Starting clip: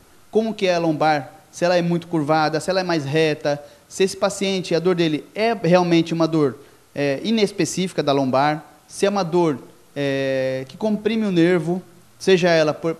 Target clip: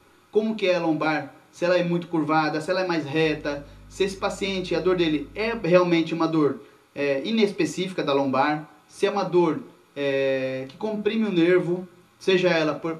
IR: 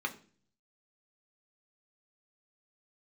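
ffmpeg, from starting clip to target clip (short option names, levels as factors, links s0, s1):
-filter_complex "[0:a]asettb=1/sr,asplit=3[s0][s1][s2];[s0]atrim=end=3.254[s3];[s1]atrim=start=3.25:end=5.63,asetpts=PTS-STARTPTS,afade=t=in:d=0.004:c=qsin,afade=t=out:st=2.376:d=0.004:c=qsin,aeval=exprs='val(0)+0.02*(sin(2*PI*50*n/s)+sin(2*PI*2*50*n/s)/2+sin(2*PI*3*50*n/s)/3+sin(2*PI*4*50*n/s)/4+sin(2*PI*5*50*n/s)/5)':c=same[s4];[s2]atrim=start=5.626[s5];[s3][s4]acrossfade=d=0.004:c1=hsin:c2=qsin[s6];[s6][s5]acrossfade=d=0.004:c1=qsin:c2=hsin[s7];[1:a]atrim=start_sample=2205,atrim=end_sample=3528[s8];[s7][s8]afir=irnorm=-1:irlink=0,volume=0.473"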